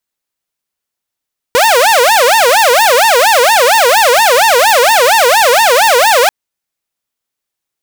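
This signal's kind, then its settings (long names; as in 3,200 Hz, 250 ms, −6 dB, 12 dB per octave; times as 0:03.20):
siren wail 471–918 Hz 4.3 per second saw −3 dBFS 4.74 s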